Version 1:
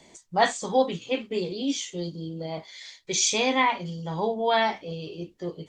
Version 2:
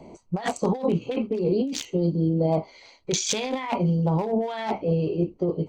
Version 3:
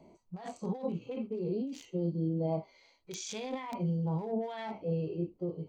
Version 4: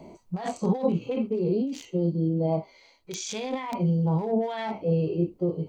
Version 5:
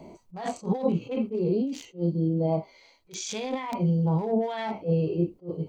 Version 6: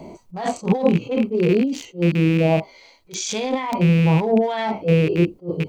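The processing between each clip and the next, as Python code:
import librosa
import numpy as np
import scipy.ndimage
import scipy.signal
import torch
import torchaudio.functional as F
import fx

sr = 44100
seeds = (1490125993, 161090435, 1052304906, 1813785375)

y1 = fx.wiener(x, sr, points=25)
y1 = fx.over_compress(y1, sr, threshold_db=-33.0, ratio=-1.0)
y1 = F.gain(torch.from_numpy(y1), 8.0).numpy()
y2 = (np.mod(10.0 ** (9.5 / 20.0) * y1 + 1.0, 2.0) - 1.0) / 10.0 ** (9.5 / 20.0)
y2 = fx.hpss(y2, sr, part='percussive', gain_db=-14)
y2 = F.gain(torch.from_numpy(y2), -9.0).numpy()
y3 = fx.rider(y2, sr, range_db=4, speed_s=2.0)
y3 = F.gain(torch.from_numpy(y3), 8.5).numpy()
y4 = fx.attack_slew(y3, sr, db_per_s=270.0)
y5 = fx.rattle_buzz(y4, sr, strikes_db=-30.0, level_db=-27.0)
y5 = F.gain(torch.from_numpy(y5), 8.0).numpy()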